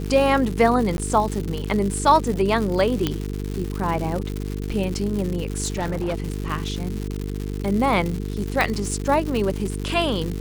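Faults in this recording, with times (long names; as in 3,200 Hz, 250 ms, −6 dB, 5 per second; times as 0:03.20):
mains buzz 50 Hz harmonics 9 −28 dBFS
surface crackle 200 per second −26 dBFS
0:00.97–0:00.98: drop-out 11 ms
0:03.07: click −7 dBFS
0:05.63–0:06.26: clipping −20.5 dBFS
0:08.61: click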